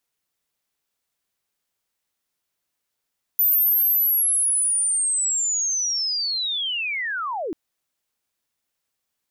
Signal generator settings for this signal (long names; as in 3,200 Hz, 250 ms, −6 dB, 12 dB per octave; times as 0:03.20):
glide linear 14,000 Hz → 280 Hz −15 dBFS → −25 dBFS 4.14 s